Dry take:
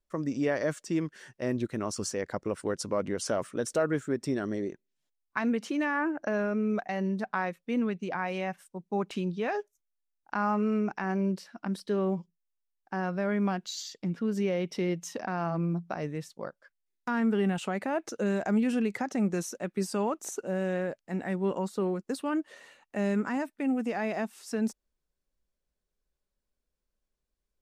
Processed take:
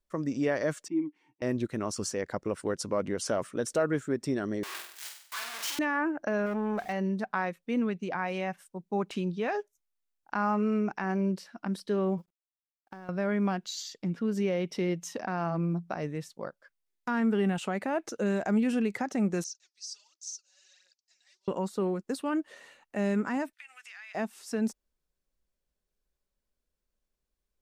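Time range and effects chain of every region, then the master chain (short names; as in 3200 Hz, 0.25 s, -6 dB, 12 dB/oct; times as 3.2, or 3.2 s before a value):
0.88–1.42 vowel filter u + comb 6.5 ms, depth 75%
4.63–5.79 infinite clipping + HPF 1200 Hz + flutter echo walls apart 8.1 m, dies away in 0.6 s
6.46–6.93 zero-crossing step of -43.5 dBFS + core saturation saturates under 610 Hz
12.18–13.09 G.711 law mismatch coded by A + compressor 16:1, threshold -39 dBFS
19.44–21.48 phaser 1.4 Hz, delay 4.3 ms, feedback 74% + Butterworth band-pass 5300 Hz, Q 2.4
23.53–24.15 HPF 1400 Hz 24 dB/oct + bell 3400 Hz +8.5 dB 2.7 oct + compressor 3:1, threshold -48 dBFS
whole clip: dry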